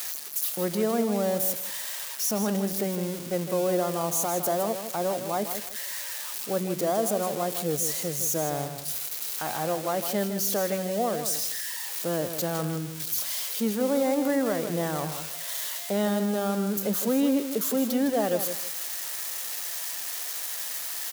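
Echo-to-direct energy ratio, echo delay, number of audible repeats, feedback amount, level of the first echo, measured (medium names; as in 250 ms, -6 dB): -9.0 dB, 159 ms, 3, 23%, -9.0 dB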